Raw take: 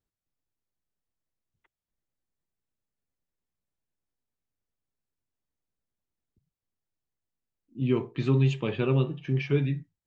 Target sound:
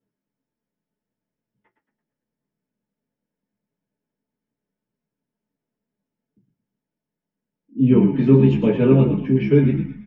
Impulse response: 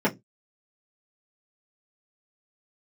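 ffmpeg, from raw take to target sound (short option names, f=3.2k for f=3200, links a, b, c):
-filter_complex "[0:a]flanger=delay=5.8:depth=8:regen=-44:speed=0.78:shape=triangular,asplit=6[a][b][c][d][e][f];[b]adelay=112,afreqshift=-55,volume=-8dB[g];[c]adelay=224,afreqshift=-110,volume=-14.7dB[h];[d]adelay=336,afreqshift=-165,volume=-21.5dB[i];[e]adelay=448,afreqshift=-220,volume=-28.2dB[j];[f]adelay=560,afreqshift=-275,volume=-35dB[k];[a][g][h][i][j][k]amix=inputs=6:normalize=0[l];[1:a]atrim=start_sample=2205[m];[l][m]afir=irnorm=-1:irlink=0,volume=-4.5dB"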